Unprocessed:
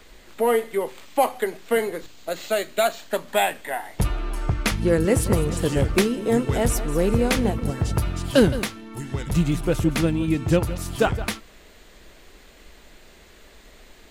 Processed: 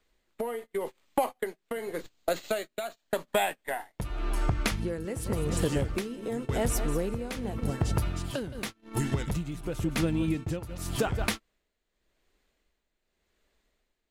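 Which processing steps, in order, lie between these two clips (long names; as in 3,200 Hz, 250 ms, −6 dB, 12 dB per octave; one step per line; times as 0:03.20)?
downward compressor 6 to 1, threshold −31 dBFS, peak gain reduction 18.5 dB
noise gate −37 dBFS, range −31 dB
amplitude tremolo 0.89 Hz, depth 65%
level +7 dB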